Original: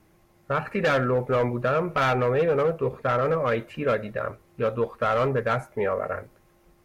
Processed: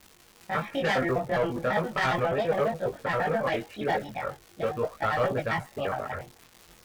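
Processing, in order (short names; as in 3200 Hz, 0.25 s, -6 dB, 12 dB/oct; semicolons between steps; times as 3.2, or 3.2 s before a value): trilling pitch shifter +5.5 st, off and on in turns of 68 ms; crackle 190/s -33 dBFS; chorus voices 2, 0.38 Hz, delay 21 ms, depth 3 ms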